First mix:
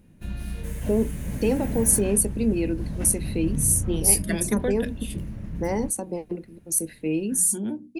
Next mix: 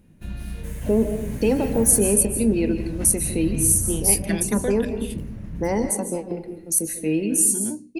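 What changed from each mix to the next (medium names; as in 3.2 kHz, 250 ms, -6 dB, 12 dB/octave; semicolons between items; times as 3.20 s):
reverb: on, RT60 0.65 s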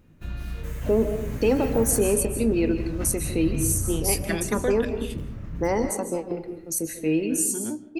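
second voice: send on; master: add graphic EQ with 31 bands 200 Hz -8 dB, 1.25 kHz +8 dB, 10 kHz -12 dB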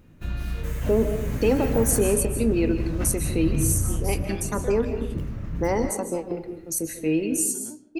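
second voice -10.5 dB; background +3.5 dB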